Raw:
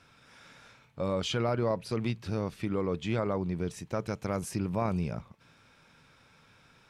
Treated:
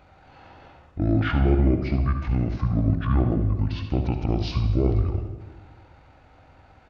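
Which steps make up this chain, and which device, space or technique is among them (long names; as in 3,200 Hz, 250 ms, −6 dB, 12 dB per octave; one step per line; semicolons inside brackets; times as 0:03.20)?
monster voice (pitch shifter −9.5 semitones; formants moved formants −3.5 semitones; low-shelf EQ 200 Hz +4 dB; single-tap delay 75 ms −11 dB; convolution reverb RT60 1.3 s, pre-delay 50 ms, DRR 8.5 dB)
level +6 dB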